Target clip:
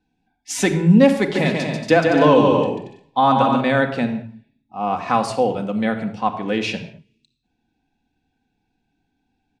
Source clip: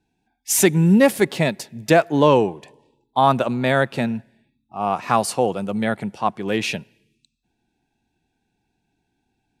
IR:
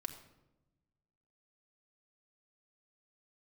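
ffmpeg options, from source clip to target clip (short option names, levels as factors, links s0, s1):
-filter_complex "[0:a]lowpass=5600,asplit=3[s0][s1][s2];[s0]afade=t=out:st=1.34:d=0.02[s3];[s1]aecho=1:1:140|231|290.2|328.6|353.6:0.631|0.398|0.251|0.158|0.1,afade=t=in:st=1.34:d=0.02,afade=t=out:st=3.6:d=0.02[s4];[s2]afade=t=in:st=3.6:d=0.02[s5];[s3][s4][s5]amix=inputs=3:normalize=0[s6];[1:a]atrim=start_sample=2205,afade=t=out:st=0.27:d=0.01,atrim=end_sample=12348[s7];[s6][s7]afir=irnorm=-1:irlink=0,volume=1.26"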